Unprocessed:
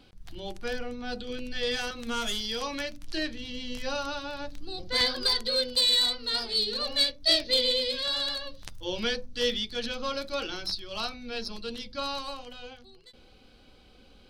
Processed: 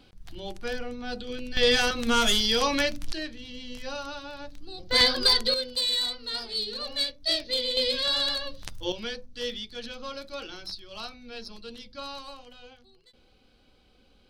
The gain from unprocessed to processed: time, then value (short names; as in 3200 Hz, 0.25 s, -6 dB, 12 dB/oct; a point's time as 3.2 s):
+0.5 dB
from 1.57 s +8.5 dB
from 3.13 s -3.5 dB
from 4.91 s +5 dB
from 5.54 s -3.5 dB
from 7.77 s +3.5 dB
from 8.92 s -5.5 dB